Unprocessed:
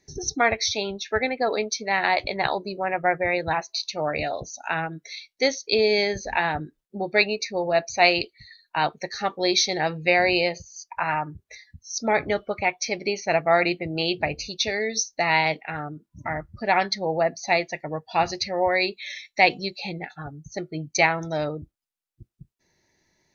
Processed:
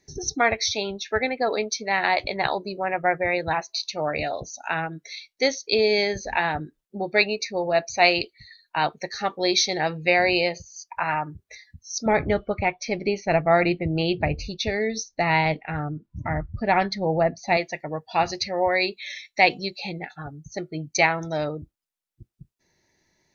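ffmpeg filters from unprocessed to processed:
ffmpeg -i in.wav -filter_complex "[0:a]asettb=1/sr,asplit=3[link_01][link_02][link_03];[link_01]atrim=end=12.064[link_04];[link_02]atrim=start=12.06:end=17.57,asetpts=PTS-STARTPTS,afade=type=in:duration=0.004:curve=qsin,afade=type=out:start_time=5.506:duration=0.004:curve=qsin,aemphasis=mode=reproduction:type=bsi[link_05];[link_03]atrim=start=17.566[link_06];[link_04][link_05]acrossfade=duration=0.004:curve1=hsin:curve2=qsin[link_07];[link_07][link_06]acrossfade=duration=0.004:curve1=qsin:curve2=hsin" out.wav

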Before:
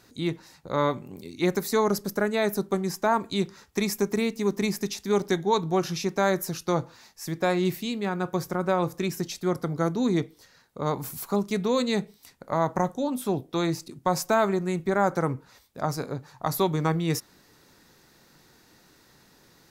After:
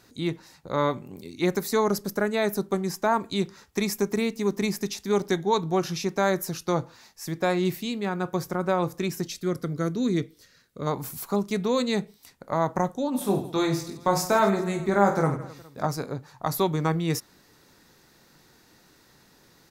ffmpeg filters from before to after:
ffmpeg -i in.wav -filter_complex "[0:a]asettb=1/sr,asplit=3[link_01][link_02][link_03];[link_01]atrim=end=9.274[link_04];[link_02]atrim=start=9.27:end=10.87,asetpts=PTS-STARTPTS,afade=type=in:duration=0.004:curve=qsin,afade=type=out:start_time=1.596:duration=0.004:curve=qsin,equalizer=frequency=850:width_type=o:width=0.65:gain=-14[link_05];[link_03]atrim=start=10.866[link_06];[link_04][link_05]acrossfade=duration=0.004:curve1=hsin:curve2=qsin[link_07];[link_07][link_06]acrossfade=duration=0.004:curve1=qsin:curve2=hsin,asplit=3[link_08][link_09][link_10];[link_08]afade=type=out:start_time=13.13:duration=0.02[link_11];[link_09]aecho=1:1:20|50|95|162.5|263.8|415.6:0.631|0.398|0.251|0.158|0.1|0.0631,afade=type=in:start_time=13.13:duration=0.02,afade=type=out:start_time=15.86:duration=0.02[link_12];[link_10]afade=type=in:start_time=15.86:duration=0.02[link_13];[link_11][link_12][link_13]amix=inputs=3:normalize=0" out.wav

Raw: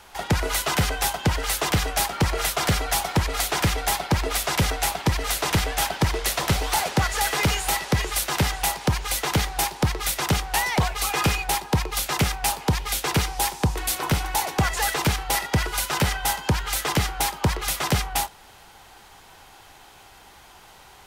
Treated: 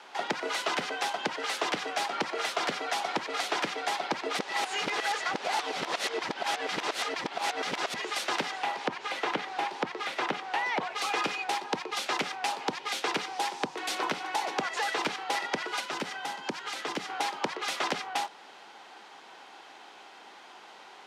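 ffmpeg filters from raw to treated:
ffmpeg -i in.wav -filter_complex "[0:a]asettb=1/sr,asplit=3[link_01][link_02][link_03];[link_01]atrim=end=8.584[link_04];[link_02]atrim=start=8.58:end=10.93,asetpts=PTS-STARTPTS,afade=type=in:duration=0.004:curve=qsin,afade=type=out:start_time=2.346:duration=0.004:curve=qsin,acrossover=split=3300[link_05][link_06];[link_06]acompressor=threshold=-39dB:ratio=4:attack=1:release=60[link_07];[link_05][link_07]amix=inputs=2:normalize=0[link_08];[link_03]atrim=start=10.926[link_09];[link_04][link_08]acrossfade=duration=0.004:curve1=hsin:curve2=qsin[link_10];[link_10][link_09]acrossfade=duration=0.004:curve1=qsin:curve2=hsin,asettb=1/sr,asplit=3[link_11][link_12][link_13];[link_11]atrim=end=15.804[link_14];[link_12]atrim=start=15.8:end=17.1,asetpts=PTS-STARTPTS,afade=type=in:duration=0.004:curve=qsin,afade=type=out:start_time=1.296:duration=0.004:curve=qsin,acrossover=split=290|5300[link_15][link_16][link_17];[link_15]acompressor=threshold=-26dB:ratio=4[link_18];[link_16]acompressor=threshold=-34dB:ratio=4[link_19];[link_17]acompressor=threshold=-36dB:ratio=4[link_20];[link_18][link_19][link_20]amix=inputs=3:normalize=0[link_21];[link_13]atrim=start=17.096[link_22];[link_14][link_21]acrossfade=duration=0.004:curve1=hsin:curve2=qsin[link_23];[link_23][link_22]acrossfade=duration=0.004:curve1=qsin:curve2=hsin,asplit=3[link_24][link_25][link_26];[link_24]atrim=end=4.392[link_27];[link_25]atrim=start=4.388:end=7.942,asetpts=PTS-STARTPTS,areverse[link_28];[link_26]atrim=start=7.938[link_29];[link_27][link_28]acrossfade=duration=0.004:curve1=hsin:curve2=hsin[link_30];[link_30][link_29]acrossfade=duration=0.004:curve1=hsin:curve2=hsin,lowpass=4700,acompressor=threshold=-26dB:ratio=6,highpass=frequency=240:width=0.5412,highpass=frequency=240:width=1.3066" out.wav

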